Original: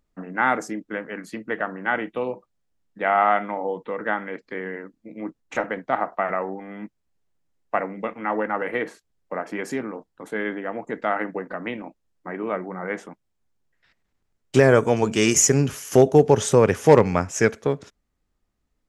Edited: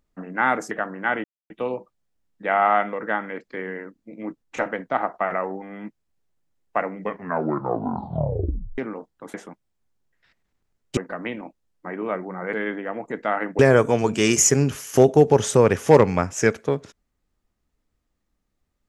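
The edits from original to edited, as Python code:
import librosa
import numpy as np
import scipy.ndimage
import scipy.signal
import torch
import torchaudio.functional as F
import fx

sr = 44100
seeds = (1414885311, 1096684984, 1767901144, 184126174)

y = fx.edit(x, sr, fx.cut(start_s=0.71, length_s=0.82),
    fx.insert_silence(at_s=2.06, length_s=0.26),
    fx.cut(start_s=3.49, length_s=0.42),
    fx.tape_stop(start_s=7.94, length_s=1.82),
    fx.swap(start_s=10.32, length_s=1.06, other_s=12.94, other_length_s=1.63), tone=tone)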